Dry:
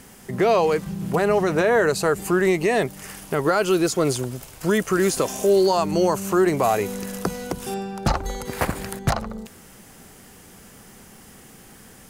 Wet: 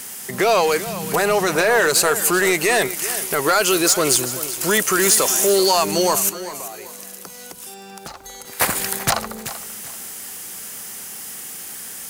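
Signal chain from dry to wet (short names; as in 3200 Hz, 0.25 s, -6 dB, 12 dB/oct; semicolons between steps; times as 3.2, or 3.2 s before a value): tilt +3.5 dB/oct; soft clip -15 dBFS, distortion -14 dB; 6.29–8.6 compressor 6:1, threshold -41 dBFS, peak gain reduction 19.5 dB; lo-fi delay 0.386 s, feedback 35%, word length 8-bit, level -13.5 dB; gain +6 dB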